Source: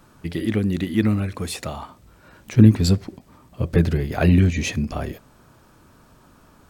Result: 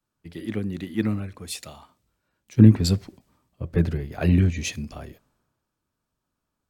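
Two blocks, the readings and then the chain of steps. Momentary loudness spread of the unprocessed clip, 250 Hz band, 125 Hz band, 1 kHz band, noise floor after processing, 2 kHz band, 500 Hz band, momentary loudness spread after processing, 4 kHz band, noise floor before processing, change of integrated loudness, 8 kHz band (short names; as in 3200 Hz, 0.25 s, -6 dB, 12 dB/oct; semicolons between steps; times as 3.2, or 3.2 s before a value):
16 LU, -3.0 dB, -3.0 dB, -8.5 dB, -82 dBFS, -6.0 dB, -5.5 dB, 20 LU, -3.0 dB, -53 dBFS, -2.0 dB, -2.0 dB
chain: three-band expander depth 70%; gain -7 dB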